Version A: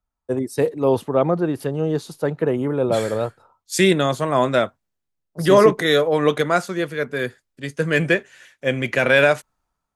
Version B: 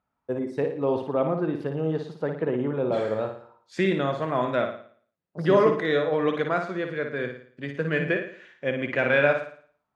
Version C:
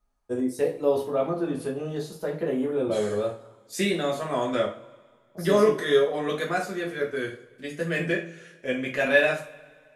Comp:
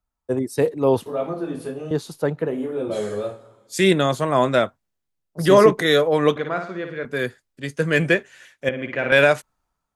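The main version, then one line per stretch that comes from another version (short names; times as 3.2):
A
1.06–1.91 from C
2.48–3.76 from C, crossfade 0.24 s
6.36–7.05 from B
8.69–9.12 from B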